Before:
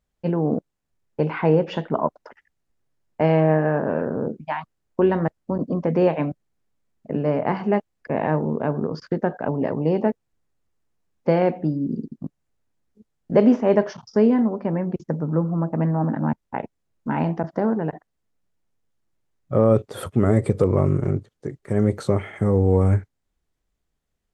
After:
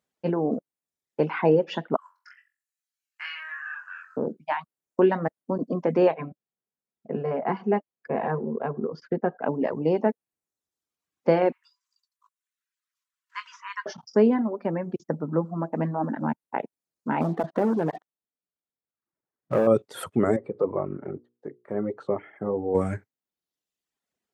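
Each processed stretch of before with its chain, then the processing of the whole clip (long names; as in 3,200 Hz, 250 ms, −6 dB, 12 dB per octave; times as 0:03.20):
0:01.96–0:04.17: Butterworth high-pass 1,300 Hz 48 dB per octave + notch filter 3,600 Hz, Q 13 + flutter between parallel walls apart 3.8 metres, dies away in 0.34 s
0:06.14–0:09.44: high-shelf EQ 3,300 Hz −11.5 dB + notch comb filter 300 Hz
0:11.52–0:13.86: linear-phase brick-wall high-pass 940 Hz + double-tracking delay 20 ms −12.5 dB
0:17.21–0:19.67: low-pass filter 1,900 Hz 24 dB per octave + downward compressor 2 to 1, threshold −23 dBFS + leveller curve on the samples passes 2
0:20.36–0:22.75: low-pass filter 1,000 Hz + spectral tilt +2.5 dB per octave + mains-hum notches 60/120/180/240/300/360/420/480 Hz
whole clip: reverb reduction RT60 1 s; high-pass filter 210 Hz 12 dB per octave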